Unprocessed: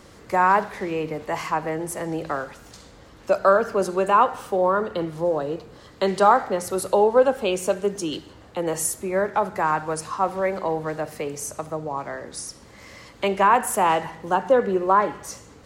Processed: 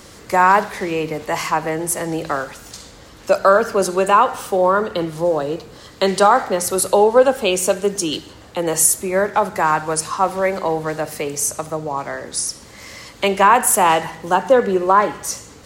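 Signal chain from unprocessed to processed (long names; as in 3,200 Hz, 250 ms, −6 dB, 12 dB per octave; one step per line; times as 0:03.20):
high-shelf EQ 3,100 Hz +8.5 dB
boost into a limiter +6 dB
level −1.5 dB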